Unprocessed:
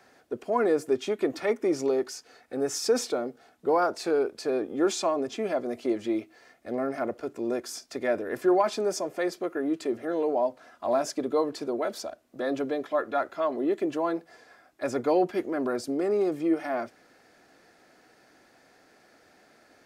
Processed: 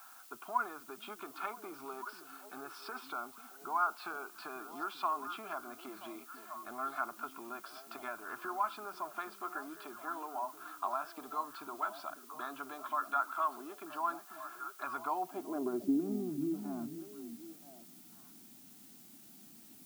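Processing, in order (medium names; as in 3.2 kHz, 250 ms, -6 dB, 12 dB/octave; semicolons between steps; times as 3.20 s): compression 3:1, threshold -33 dBFS, peak gain reduction 11.5 dB; static phaser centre 1.9 kHz, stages 6; repeats whose band climbs or falls 490 ms, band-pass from 200 Hz, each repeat 1.4 oct, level -5.5 dB; band-pass sweep 1.3 kHz -> 210 Hz, 14.97–16.11 s; added noise blue -68 dBFS; trim +10.5 dB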